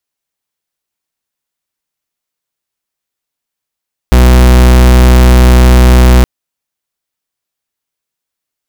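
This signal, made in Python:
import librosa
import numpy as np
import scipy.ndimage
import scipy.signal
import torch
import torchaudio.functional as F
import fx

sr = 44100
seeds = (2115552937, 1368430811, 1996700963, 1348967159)

y = fx.pulse(sr, length_s=2.12, hz=62.3, level_db=-3.5, duty_pct=43)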